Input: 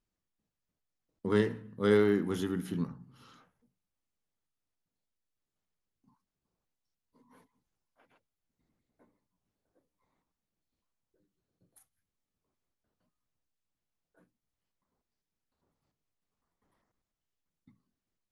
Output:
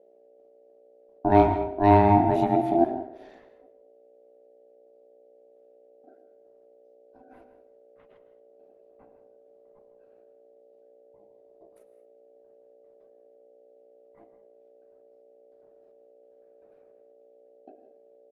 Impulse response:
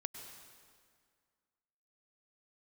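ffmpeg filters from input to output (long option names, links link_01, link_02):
-filter_complex "[0:a]aeval=exprs='val(0)+0.000251*(sin(2*PI*60*n/s)+sin(2*PI*2*60*n/s)/2+sin(2*PI*3*60*n/s)/3+sin(2*PI*4*60*n/s)/4+sin(2*PI*5*60*n/s)/5)':channel_layout=same,bass=frequency=250:gain=14,treble=frequency=4000:gain=-13,asplit=2[link_01][link_02];[link_02]adelay=160,highpass=300,lowpass=3400,asoftclip=type=hard:threshold=-18dB,volume=-15dB[link_03];[link_01][link_03]amix=inputs=2:normalize=0,asplit=2[link_04][link_05];[1:a]atrim=start_sample=2205,afade=type=out:start_time=0.28:duration=0.01,atrim=end_sample=12789[link_06];[link_05][link_06]afir=irnorm=-1:irlink=0,volume=6.5dB[link_07];[link_04][link_07]amix=inputs=2:normalize=0,aeval=exprs='val(0)*sin(2*PI*510*n/s)':channel_layout=same,volume=-2.5dB"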